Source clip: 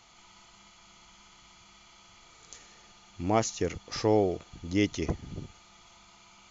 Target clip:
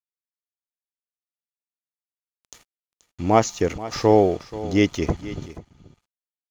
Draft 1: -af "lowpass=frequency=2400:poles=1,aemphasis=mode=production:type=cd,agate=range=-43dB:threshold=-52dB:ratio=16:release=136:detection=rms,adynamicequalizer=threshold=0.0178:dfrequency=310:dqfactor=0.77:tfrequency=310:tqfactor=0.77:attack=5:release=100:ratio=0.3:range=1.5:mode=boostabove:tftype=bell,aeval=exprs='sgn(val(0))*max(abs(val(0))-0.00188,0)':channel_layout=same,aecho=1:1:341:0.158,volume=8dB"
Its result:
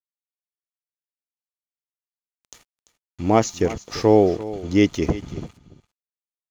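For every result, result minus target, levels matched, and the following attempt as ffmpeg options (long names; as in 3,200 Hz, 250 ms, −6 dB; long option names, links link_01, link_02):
echo 140 ms early; 1,000 Hz band −2.5 dB
-af "lowpass=frequency=2400:poles=1,aemphasis=mode=production:type=cd,agate=range=-43dB:threshold=-52dB:ratio=16:release=136:detection=rms,adynamicequalizer=threshold=0.0178:dfrequency=310:dqfactor=0.77:tfrequency=310:tqfactor=0.77:attack=5:release=100:ratio=0.3:range=1.5:mode=boostabove:tftype=bell,aeval=exprs='sgn(val(0))*max(abs(val(0))-0.00188,0)':channel_layout=same,aecho=1:1:481:0.158,volume=8dB"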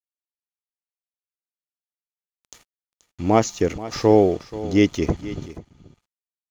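1,000 Hz band −2.5 dB
-af "lowpass=frequency=2400:poles=1,aemphasis=mode=production:type=cd,agate=range=-43dB:threshold=-52dB:ratio=16:release=136:detection=rms,adynamicequalizer=threshold=0.0178:dfrequency=890:dqfactor=0.77:tfrequency=890:tqfactor=0.77:attack=5:release=100:ratio=0.3:range=1.5:mode=boostabove:tftype=bell,aeval=exprs='sgn(val(0))*max(abs(val(0))-0.00188,0)':channel_layout=same,aecho=1:1:481:0.158,volume=8dB"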